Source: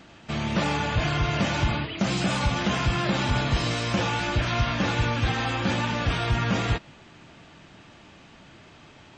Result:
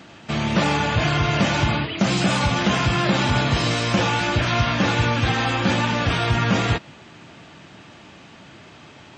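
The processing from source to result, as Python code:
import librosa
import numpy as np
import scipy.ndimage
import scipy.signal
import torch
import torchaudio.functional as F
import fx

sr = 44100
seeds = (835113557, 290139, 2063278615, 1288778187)

y = scipy.signal.sosfilt(scipy.signal.butter(2, 82.0, 'highpass', fs=sr, output='sos'), x)
y = y * 10.0 ** (5.5 / 20.0)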